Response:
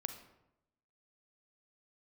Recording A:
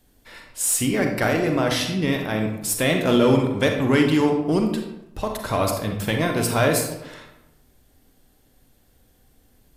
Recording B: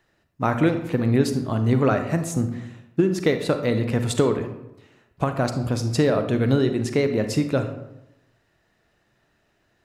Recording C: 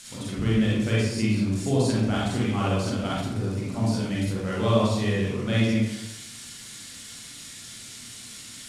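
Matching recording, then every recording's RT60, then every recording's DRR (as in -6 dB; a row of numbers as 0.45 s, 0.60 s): B; 0.85 s, 0.85 s, 0.85 s; 3.0 dB, 7.5 dB, -7.0 dB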